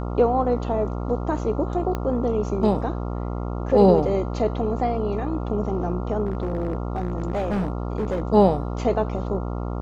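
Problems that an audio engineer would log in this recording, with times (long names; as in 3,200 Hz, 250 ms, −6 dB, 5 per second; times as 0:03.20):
mains buzz 60 Hz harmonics 23 −28 dBFS
0:01.95: click −14 dBFS
0:06.26–0:08.27: clipping −20 dBFS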